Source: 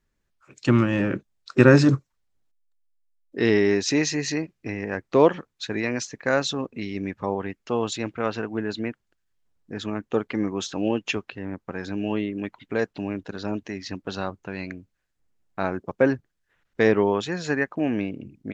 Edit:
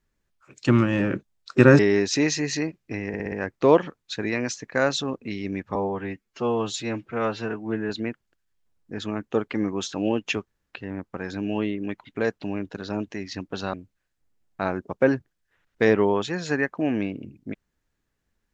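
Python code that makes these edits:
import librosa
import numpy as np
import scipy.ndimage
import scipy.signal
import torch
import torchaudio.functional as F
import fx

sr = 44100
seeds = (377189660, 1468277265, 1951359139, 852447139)

y = fx.edit(x, sr, fx.cut(start_s=1.79, length_s=1.75),
    fx.stutter(start_s=4.83, slice_s=0.06, count=5),
    fx.stretch_span(start_s=7.26, length_s=1.43, factor=1.5),
    fx.insert_room_tone(at_s=11.26, length_s=0.25),
    fx.cut(start_s=14.28, length_s=0.44), tone=tone)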